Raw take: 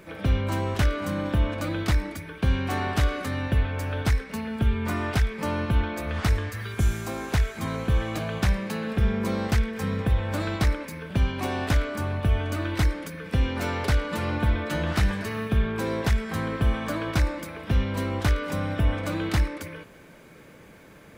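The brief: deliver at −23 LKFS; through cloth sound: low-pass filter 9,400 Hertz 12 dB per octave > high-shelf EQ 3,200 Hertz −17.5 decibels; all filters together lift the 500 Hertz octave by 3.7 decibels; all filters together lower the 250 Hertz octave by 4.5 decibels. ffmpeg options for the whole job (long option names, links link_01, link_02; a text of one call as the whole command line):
ffmpeg -i in.wav -af "lowpass=9400,equalizer=frequency=250:width_type=o:gain=-8,equalizer=frequency=500:width_type=o:gain=7,highshelf=frequency=3200:gain=-17.5,volume=4.5dB" out.wav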